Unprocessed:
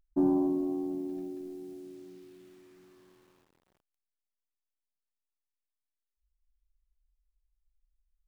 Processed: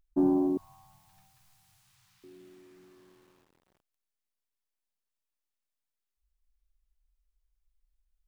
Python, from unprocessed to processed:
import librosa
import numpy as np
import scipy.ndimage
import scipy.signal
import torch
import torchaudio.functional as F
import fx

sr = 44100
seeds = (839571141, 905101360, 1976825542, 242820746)

y = fx.ellip_bandstop(x, sr, low_hz=120.0, high_hz=950.0, order=3, stop_db=50, at=(0.57, 2.24))
y = y * 10.0 ** (1.0 / 20.0)